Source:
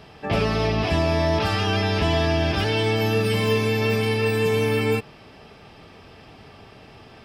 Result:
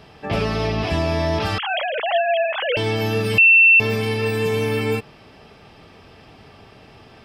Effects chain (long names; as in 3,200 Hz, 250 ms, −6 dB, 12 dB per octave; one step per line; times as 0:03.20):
0:01.58–0:02.77: three sine waves on the formant tracks
0:03.38–0:03.80: beep over 2,690 Hz −8 dBFS